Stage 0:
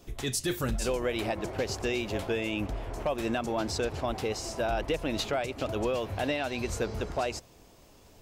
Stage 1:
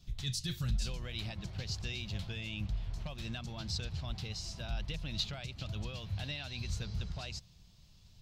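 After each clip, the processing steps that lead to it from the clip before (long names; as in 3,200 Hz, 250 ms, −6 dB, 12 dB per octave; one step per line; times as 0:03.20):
drawn EQ curve 180 Hz 0 dB, 260 Hz −18 dB, 430 Hz −23 dB, 2,200 Hz −11 dB, 4,100 Hz +1 dB, 9,100 Hz −14 dB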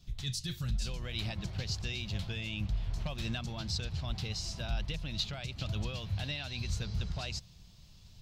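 speech leveller 0.5 s
level +2.5 dB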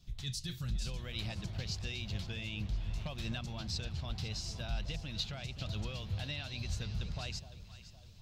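delay that swaps between a low-pass and a high-pass 255 ms, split 840 Hz, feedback 66%, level −11 dB
level −3 dB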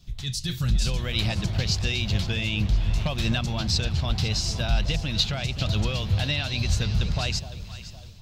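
automatic gain control gain up to 6 dB
level +8 dB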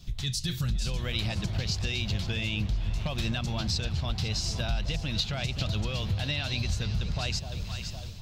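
downward compressor 3 to 1, threshold −34 dBFS, peak gain reduction 12.5 dB
level +4.5 dB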